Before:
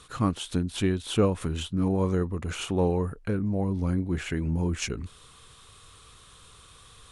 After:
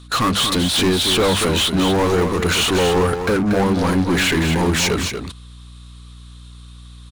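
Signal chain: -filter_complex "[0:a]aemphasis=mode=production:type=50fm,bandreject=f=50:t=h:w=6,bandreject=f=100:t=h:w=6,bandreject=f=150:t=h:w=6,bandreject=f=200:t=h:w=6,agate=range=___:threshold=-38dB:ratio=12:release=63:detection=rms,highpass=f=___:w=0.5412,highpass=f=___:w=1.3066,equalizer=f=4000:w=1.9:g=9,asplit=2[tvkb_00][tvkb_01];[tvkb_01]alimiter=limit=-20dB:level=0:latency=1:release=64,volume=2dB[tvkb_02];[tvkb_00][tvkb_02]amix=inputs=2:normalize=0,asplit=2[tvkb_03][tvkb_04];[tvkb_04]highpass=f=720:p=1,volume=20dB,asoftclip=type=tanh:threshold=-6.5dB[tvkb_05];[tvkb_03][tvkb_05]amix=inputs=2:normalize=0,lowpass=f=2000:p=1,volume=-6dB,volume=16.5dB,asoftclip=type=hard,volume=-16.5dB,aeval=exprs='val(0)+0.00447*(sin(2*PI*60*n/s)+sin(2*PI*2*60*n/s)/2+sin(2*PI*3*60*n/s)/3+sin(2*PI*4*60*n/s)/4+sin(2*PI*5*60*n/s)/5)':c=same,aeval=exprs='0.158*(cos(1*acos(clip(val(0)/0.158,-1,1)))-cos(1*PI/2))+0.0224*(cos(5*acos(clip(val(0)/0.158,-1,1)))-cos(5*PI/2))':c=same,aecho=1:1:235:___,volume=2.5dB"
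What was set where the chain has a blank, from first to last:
-28dB, 55, 55, 0.447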